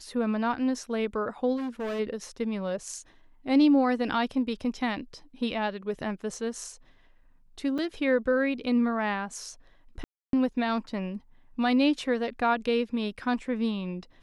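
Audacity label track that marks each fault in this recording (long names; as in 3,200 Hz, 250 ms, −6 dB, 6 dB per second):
1.560000	2.000000	clipping −29.5 dBFS
7.780000	7.790000	drop-out 6.3 ms
10.040000	10.330000	drop-out 292 ms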